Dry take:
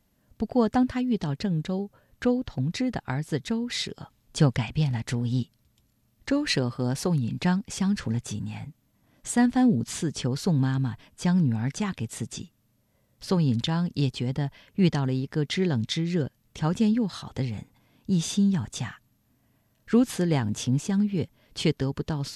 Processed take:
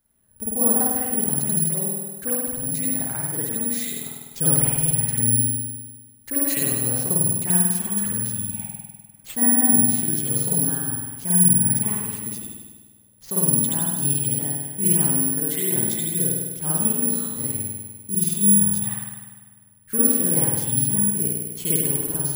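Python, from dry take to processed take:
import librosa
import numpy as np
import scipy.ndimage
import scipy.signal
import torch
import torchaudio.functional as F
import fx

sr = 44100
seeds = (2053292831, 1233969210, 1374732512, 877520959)

y = fx.rev_spring(x, sr, rt60_s=1.4, pass_ms=(50,), chirp_ms=40, drr_db=-8.5)
y = (np.kron(y[::4], np.eye(4)[0]) * 4)[:len(y)]
y = y * 10.0 ** (-11.0 / 20.0)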